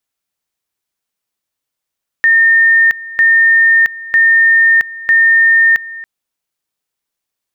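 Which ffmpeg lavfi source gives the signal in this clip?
-f lavfi -i "aevalsrc='pow(10,(-5.5-19*gte(mod(t,0.95),0.67))/20)*sin(2*PI*1820*t)':d=3.8:s=44100"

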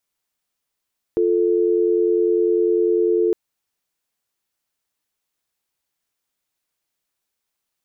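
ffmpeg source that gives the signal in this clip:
-f lavfi -i "aevalsrc='0.133*(sin(2*PI*350*t)+sin(2*PI*440*t))':d=2.16:s=44100"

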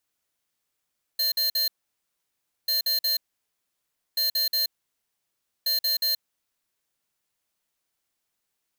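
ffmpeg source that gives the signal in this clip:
-f lavfi -i "aevalsrc='0.0631*(2*lt(mod(4170*t,1),0.5)-1)*clip(min(mod(mod(t,1.49),0.18),0.13-mod(mod(t,1.49),0.18))/0.005,0,1)*lt(mod(t,1.49),0.54)':d=5.96:s=44100"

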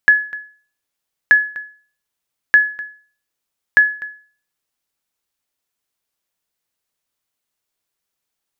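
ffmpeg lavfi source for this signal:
-f lavfi -i "aevalsrc='0.75*(sin(2*PI*1700*mod(t,1.23))*exp(-6.91*mod(t,1.23)/0.42)+0.106*sin(2*PI*1700*max(mod(t,1.23)-0.25,0))*exp(-6.91*max(mod(t,1.23)-0.25,0)/0.42))':d=4.92:s=44100"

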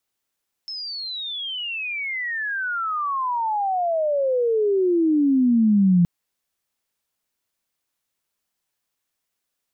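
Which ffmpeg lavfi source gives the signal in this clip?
-f lavfi -i "aevalsrc='pow(10,(-29+16.5*t/5.37)/20)*sin(2*PI*5300*5.37/log(170/5300)*(exp(log(170/5300)*t/5.37)-1))':d=5.37:s=44100"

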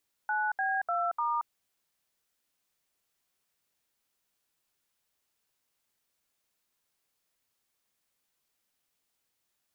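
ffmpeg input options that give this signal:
-f lavfi -i "aevalsrc='0.0335*clip(min(mod(t,0.298),0.228-mod(t,0.298))/0.002,0,1)*(eq(floor(t/0.298),0)*(sin(2*PI*852*mod(t,0.298))+sin(2*PI*1477*mod(t,0.298)))+eq(floor(t/0.298),1)*(sin(2*PI*770*mod(t,0.298))+sin(2*PI*1633*mod(t,0.298)))+eq(floor(t/0.298),2)*(sin(2*PI*697*mod(t,0.298))+sin(2*PI*1336*mod(t,0.298)))+eq(floor(t/0.298),3)*(sin(2*PI*941*mod(t,0.298))+sin(2*PI*1209*mod(t,0.298))))':d=1.192:s=44100"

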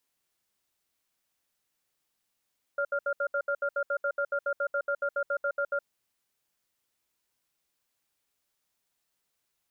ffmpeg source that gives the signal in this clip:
-f lavfi -i "aevalsrc='0.0376*(sin(2*PI*568*t)+sin(2*PI*1400*t))*clip(min(mod(t,0.14),0.07-mod(t,0.14))/0.005,0,1)':d=3.08:s=44100"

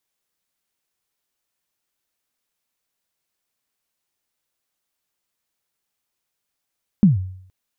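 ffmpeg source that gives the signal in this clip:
-f lavfi -i "aevalsrc='0.501*pow(10,-3*t/0.65)*sin(2*PI*(220*0.145/log(93/220)*(exp(log(93/220)*min(t,0.145)/0.145)-1)+93*max(t-0.145,0)))':d=0.47:s=44100"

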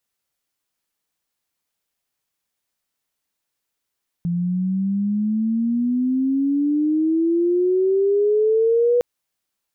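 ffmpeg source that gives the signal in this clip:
-f lavfi -i "aevalsrc='pow(10,(-19+5.5*t/4.76)/20)*sin(2*PI*170*4.76/log(490/170)*(exp(log(490/170)*t/4.76)-1))':d=4.76:s=44100"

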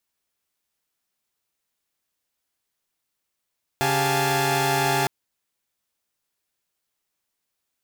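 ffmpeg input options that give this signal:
-f lavfi -i "aevalsrc='0.0631*((2*mod(138.59*t,1)-1)+(2*mod(392*t,1)-1)+(2*mod(698.46*t,1)-1)+(2*mod(830.61*t,1)-1)+(2*mod(880*t,1)-1))':d=1.26:s=44100"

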